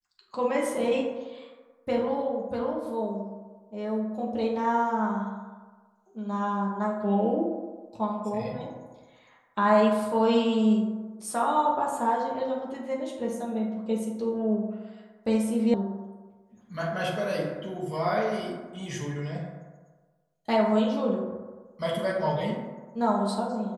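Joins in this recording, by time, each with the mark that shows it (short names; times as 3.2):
15.74 sound cut off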